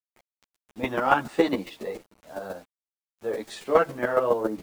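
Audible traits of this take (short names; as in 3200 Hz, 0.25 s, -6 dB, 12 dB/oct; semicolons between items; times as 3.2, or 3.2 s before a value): a quantiser's noise floor 8-bit, dither none; chopped level 7.2 Hz, depth 65%, duty 10%; a shimmering, thickened sound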